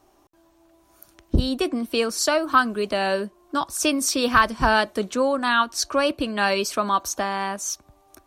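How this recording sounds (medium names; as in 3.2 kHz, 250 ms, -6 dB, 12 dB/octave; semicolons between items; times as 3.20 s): noise floor -60 dBFS; spectral tilt -3.0 dB/octave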